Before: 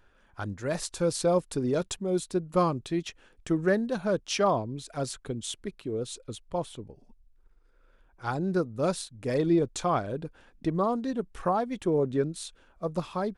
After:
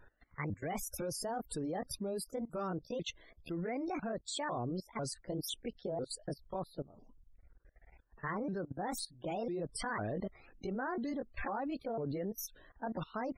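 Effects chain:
pitch shifter swept by a sawtooth +7.5 semitones, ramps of 499 ms
output level in coarse steps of 21 dB
spectral peaks only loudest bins 64
level +5 dB

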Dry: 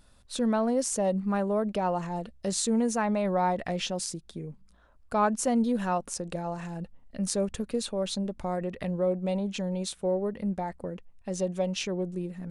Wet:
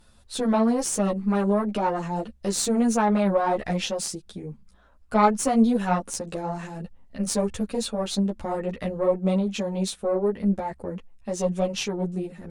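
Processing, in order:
harmonic generator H 2 −13 dB, 4 −14 dB, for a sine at −11 dBFS
string-ensemble chorus
level +6.5 dB

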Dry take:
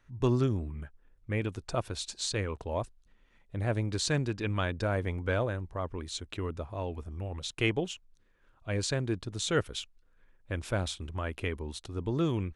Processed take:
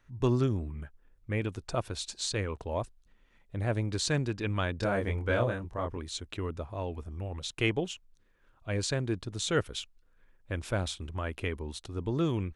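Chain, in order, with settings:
0:04.78–0:05.97: double-tracking delay 25 ms −2.5 dB

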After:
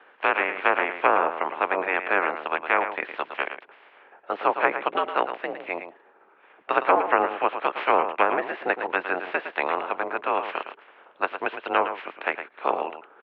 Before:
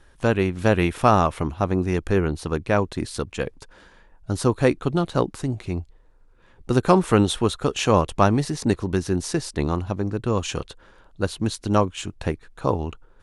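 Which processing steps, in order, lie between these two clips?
ceiling on every frequency bin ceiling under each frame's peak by 24 dB
treble cut that deepens with the level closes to 1,300 Hz, closed at −13.5 dBFS
on a send: single-tap delay 111 ms −9.5 dB
on the sum: single-sideband voice off tune −78 Hz 490–2,800 Hz

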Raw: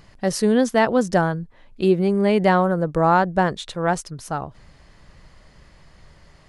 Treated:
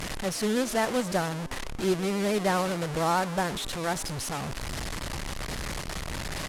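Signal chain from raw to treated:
linear delta modulator 64 kbit/s, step −18 dBFS
pitch vibrato 13 Hz 35 cents
harmonic generator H 6 −24 dB, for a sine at −4.5 dBFS
on a send: echo with shifted repeats 120 ms, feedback 60%, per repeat +110 Hz, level −20.5 dB
on the sum: level −9 dB

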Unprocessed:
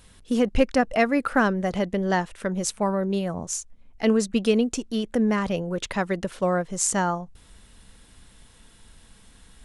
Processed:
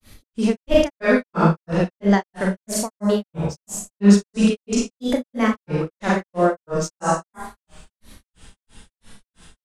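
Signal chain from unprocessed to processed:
four-comb reverb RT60 0.92 s, combs from 32 ms, DRR −2.5 dB
granular cloud 238 ms, grains 3 per second, pitch spread up and down by 3 semitones
level +4 dB

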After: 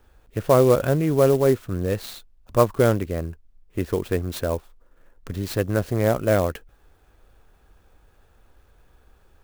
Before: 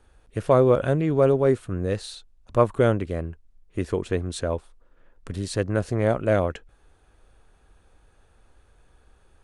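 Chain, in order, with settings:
converter with an unsteady clock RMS 0.03 ms
level +1.5 dB

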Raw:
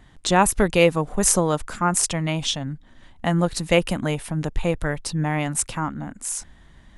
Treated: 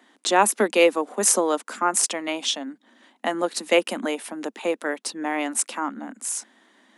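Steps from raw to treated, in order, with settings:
Butterworth high-pass 220 Hz 72 dB per octave

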